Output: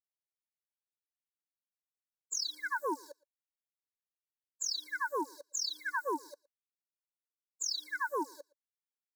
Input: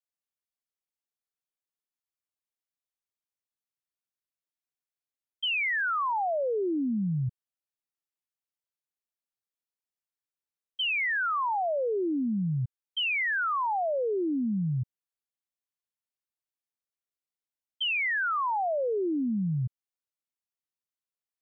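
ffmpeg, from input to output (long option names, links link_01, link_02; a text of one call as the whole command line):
ffmpeg -i in.wav -filter_complex "[0:a]equalizer=frequency=980:width_type=o:width=2:gain=3,asplit=2[link_01][link_02];[link_02]alimiter=level_in=7.5dB:limit=-24dB:level=0:latency=1,volume=-7.5dB,volume=1.5dB[link_03];[link_01][link_03]amix=inputs=2:normalize=0,acrusher=bits=7:dc=4:mix=0:aa=0.000001,aeval=exprs='val(0)*sin(2*PI*130*n/s)':channel_layout=same,asetrate=103194,aresample=44100,asuperstop=centerf=2700:order=8:qfactor=1.3,asplit=2[link_04][link_05];[link_05]adelay=116.6,volume=-24dB,highshelf=frequency=4000:gain=-2.62[link_06];[link_04][link_06]amix=inputs=2:normalize=0,afftfilt=real='re*eq(mod(floor(b*sr/1024/290),2),1)':imag='im*eq(mod(floor(b*sr/1024/290),2),1)':win_size=1024:overlap=0.75,volume=-5dB" out.wav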